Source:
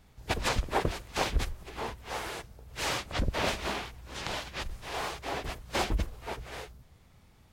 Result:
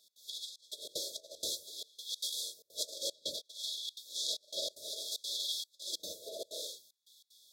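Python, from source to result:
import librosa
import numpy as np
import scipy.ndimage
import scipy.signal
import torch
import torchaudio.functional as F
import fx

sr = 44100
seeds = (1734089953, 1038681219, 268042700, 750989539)

y = fx.rev_gated(x, sr, seeds[0], gate_ms=140, shape='flat', drr_db=-4.5)
y = fx.filter_lfo_highpass(y, sr, shape='sine', hz=0.59, low_hz=790.0, high_hz=2600.0, q=7.5)
y = fx.over_compress(y, sr, threshold_db=-26.0, ratio=-0.5)
y = fx.brickwall_bandstop(y, sr, low_hz=650.0, high_hz=3300.0)
y = fx.step_gate(y, sr, bpm=189, pattern='x.xxxxx..xx.xxxx', floor_db=-24.0, edge_ms=4.5)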